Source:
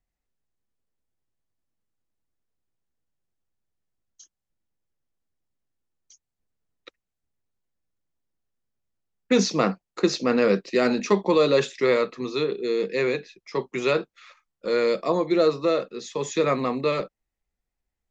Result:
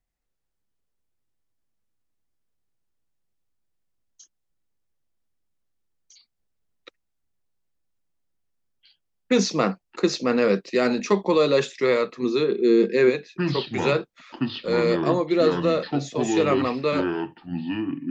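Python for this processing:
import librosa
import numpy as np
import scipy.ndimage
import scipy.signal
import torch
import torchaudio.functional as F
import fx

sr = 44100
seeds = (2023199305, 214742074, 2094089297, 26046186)

y = fx.small_body(x, sr, hz=(230.0, 350.0, 1600.0), ring_ms=85, db=fx.line((12.22, 12.0), (13.09, 15.0)), at=(12.22, 13.09), fade=0.02)
y = fx.echo_pitch(y, sr, ms=221, semitones=-6, count=3, db_per_echo=-6.0)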